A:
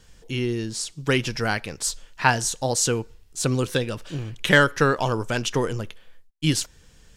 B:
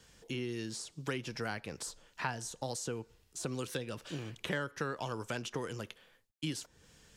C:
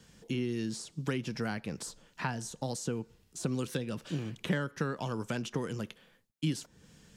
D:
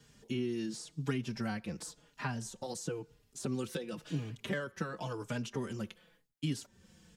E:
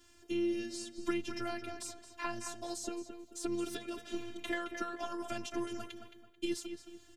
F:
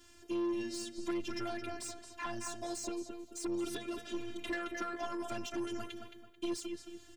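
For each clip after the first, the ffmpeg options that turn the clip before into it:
-filter_complex "[0:a]highpass=f=130:p=1,acrossover=split=200|1300[a][b][c];[a]acompressor=threshold=-41dB:ratio=4[d];[b]acompressor=threshold=-35dB:ratio=4[e];[c]acompressor=threshold=-39dB:ratio=4[f];[d][e][f]amix=inputs=3:normalize=0,volume=-4dB"
-af "equalizer=f=190:t=o:w=1.3:g=10"
-filter_complex "[0:a]asplit=2[a][b];[b]adelay=4.4,afreqshift=-0.94[c];[a][c]amix=inputs=2:normalize=1"
-filter_complex "[0:a]afftfilt=real='hypot(re,im)*cos(PI*b)':imag='0':win_size=512:overlap=0.75,asplit=2[a][b];[b]adelay=219,lowpass=f=3.6k:p=1,volume=-8dB,asplit=2[c][d];[d]adelay=219,lowpass=f=3.6k:p=1,volume=0.36,asplit=2[e][f];[f]adelay=219,lowpass=f=3.6k:p=1,volume=0.36,asplit=2[g][h];[h]adelay=219,lowpass=f=3.6k:p=1,volume=0.36[i];[a][c][e][g][i]amix=inputs=5:normalize=0,volume=4.5dB"
-af "asoftclip=type=tanh:threshold=-33.5dB,volume=3dB"

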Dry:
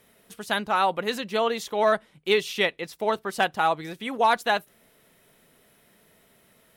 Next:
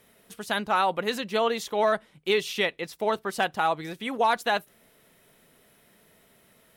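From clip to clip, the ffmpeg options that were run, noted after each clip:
-af "alimiter=limit=-14dB:level=0:latency=1:release=67"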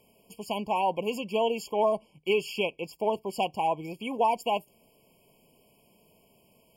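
-af "afftfilt=real='re*eq(mod(floor(b*sr/1024/1100),2),0)':imag='im*eq(mod(floor(b*sr/1024/1100),2),0)':win_size=1024:overlap=0.75,volume=-1dB"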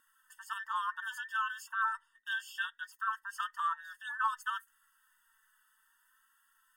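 -af "afftfilt=real='real(if(between(b,1,1012),(2*floor((b-1)/92)+1)*92-b,b),0)':imag='imag(if(between(b,1,1012),(2*floor((b-1)/92)+1)*92-b,b),0)*if(between(b,1,1012),-1,1)':win_size=2048:overlap=0.75,flanger=delay=3.6:depth=1.1:regen=39:speed=0.62:shape=sinusoidal,equalizer=f=125:t=o:w=1:g=7,equalizer=f=250:t=o:w=1:g=11,equalizer=f=500:t=o:w=1:g=9,equalizer=f=1k:t=o:w=1:g=-5,equalizer=f=2k:t=o:w=1:g=-4,equalizer=f=4k:t=o:w=1:g=-10"

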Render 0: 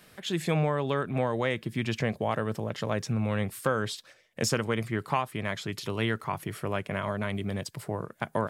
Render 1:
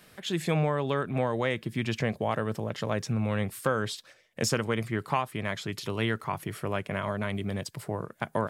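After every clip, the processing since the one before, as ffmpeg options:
-af anull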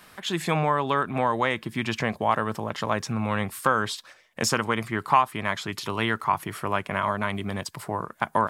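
-af "equalizer=f=125:t=o:w=1:g=-6,equalizer=f=500:t=o:w=1:g=-5,equalizer=f=1k:t=o:w=1:g=8,volume=4dB"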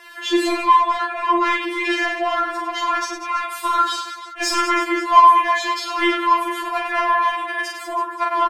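-filter_complex "[0:a]aecho=1:1:40|100|190|325|527.5:0.631|0.398|0.251|0.158|0.1,asplit=2[a][b];[b]highpass=f=720:p=1,volume=17dB,asoftclip=type=tanh:threshold=-4.5dB[c];[a][c]amix=inputs=2:normalize=0,lowpass=f=3.4k:p=1,volume=-6dB,afftfilt=real='re*4*eq(mod(b,16),0)':imag='im*4*eq(mod(b,16),0)':win_size=2048:overlap=0.75"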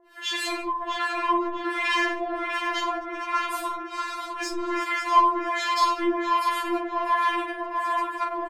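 -filter_complex "[0:a]acrossover=split=680[a][b];[a]aeval=exprs='val(0)*(1-1/2+1/2*cos(2*PI*1.3*n/s))':c=same[c];[b]aeval=exprs='val(0)*(1-1/2-1/2*cos(2*PI*1.3*n/s))':c=same[d];[c][d]amix=inputs=2:normalize=0,asplit=2[e][f];[f]adelay=650,lowpass=f=2.3k:p=1,volume=-3.5dB,asplit=2[g][h];[h]adelay=650,lowpass=f=2.3k:p=1,volume=0.5,asplit=2[i][j];[j]adelay=650,lowpass=f=2.3k:p=1,volume=0.5,asplit=2[k][l];[l]adelay=650,lowpass=f=2.3k:p=1,volume=0.5,asplit=2[m][n];[n]adelay=650,lowpass=f=2.3k:p=1,volume=0.5,asplit=2[o][p];[p]adelay=650,lowpass=f=2.3k:p=1,volume=0.5,asplit=2[q][r];[r]adelay=650,lowpass=f=2.3k:p=1,volume=0.5[s];[g][i][k][m][o][q][s]amix=inputs=7:normalize=0[t];[e][t]amix=inputs=2:normalize=0,volume=-1.5dB"

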